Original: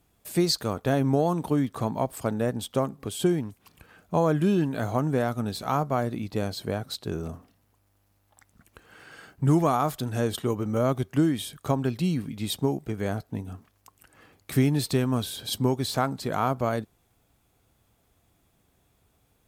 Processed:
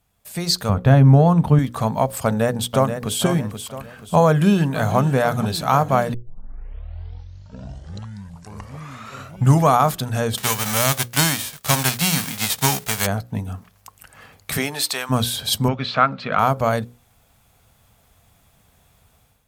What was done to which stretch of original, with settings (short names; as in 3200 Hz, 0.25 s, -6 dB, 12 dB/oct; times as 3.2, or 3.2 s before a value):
0.69–1.59 tone controls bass +10 dB, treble -11 dB
2.25–3.19 echo throw 0.48 s, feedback 40%, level -8 dB
4.26–4.96 echo throw 0.49 s, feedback 85%, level -12.5 dB
6.14 tape start 3.55 s
10.36–13.05 spectral whitening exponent 0.3
14.56–15.09 HPF 400 Hz -> 1000 Hz
15.68–16.39 speaker cabinet 170–3800 Hz, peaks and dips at 380 Hz -5 dB, 860 Hz -7 dB, 1300 Hz +8 dB, 2500 Hz +7 dB
whole clip: bell 330 Hz -13.5 dB 0.54 oct; notches 60/120/180/240/300/360/420/480/540 Hz; AGC gain up to 11 dB